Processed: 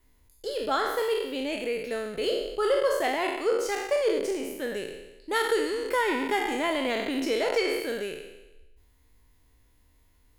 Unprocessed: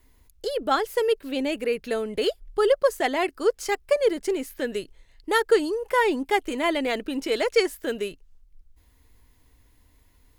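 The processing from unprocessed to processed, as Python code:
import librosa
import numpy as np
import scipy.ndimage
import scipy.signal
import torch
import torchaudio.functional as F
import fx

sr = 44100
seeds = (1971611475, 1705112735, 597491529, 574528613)

y = fx.spec_trails(x, sr, decay_s=1.01)
y = fx.band_squash(y, sr, depth_pct=70, at=(5.49, 7.8))
y = F.gain(torch.from_numpy(y), -6.5).numpy()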